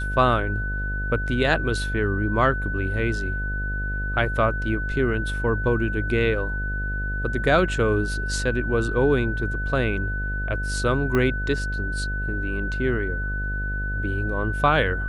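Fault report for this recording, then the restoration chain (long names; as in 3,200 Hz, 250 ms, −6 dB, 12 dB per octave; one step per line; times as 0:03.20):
mains buzz 50 Hz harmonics 14 −28 dBFS
whistle 1,500 Hz −29 dBFS
0:11.15: click −11 dBFS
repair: click removal
notch filter 1,500 Hz, Q 30
hum removal 50 Hz, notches 14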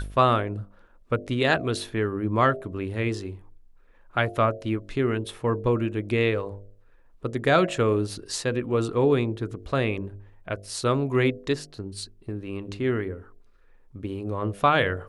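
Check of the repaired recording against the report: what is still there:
0:11.15: click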